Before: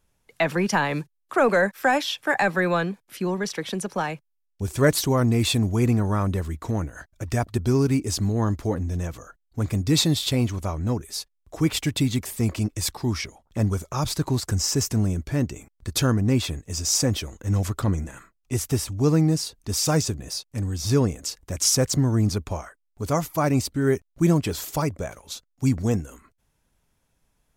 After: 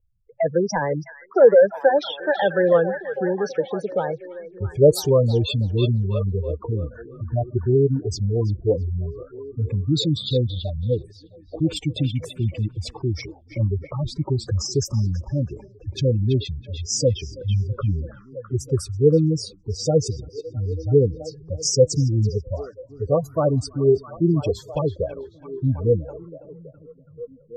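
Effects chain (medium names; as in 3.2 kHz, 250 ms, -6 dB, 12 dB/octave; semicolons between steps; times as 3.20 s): spectral gate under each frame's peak -10 dB strong; level-controlled noise filter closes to 470 Hz, open at -20.5 dBFS; FFT filter 140 Hz 0 dB, 240 Hz -9 dB, 500 Hz +10 dB, 710 Hz -2 dB, 2.1 kHz -6 dB, 3.4 kHz -3 dB; on a send: repeats whose band climbs or falls 329 ms, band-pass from 2.7 kHz, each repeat -0.7 oct, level -5 dB; on the sum: trim +2.5 dB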